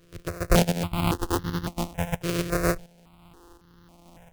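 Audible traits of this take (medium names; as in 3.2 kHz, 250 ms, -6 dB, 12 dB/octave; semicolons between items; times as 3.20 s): a buzz of ramps at a fixed pitch in blocks of 256 samples; tremolo saw up 1.4 Hz, depth 65%; aliases and images of a low sample rate 2 kHz, jitter 20%; notches that jump at a steady rate 3.6 Hz 220–2400 Hz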